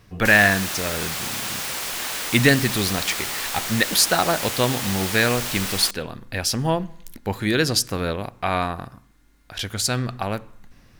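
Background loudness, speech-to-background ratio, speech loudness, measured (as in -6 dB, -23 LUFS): -26.0 LUFS, 4.0 dB, -22.0 LUFS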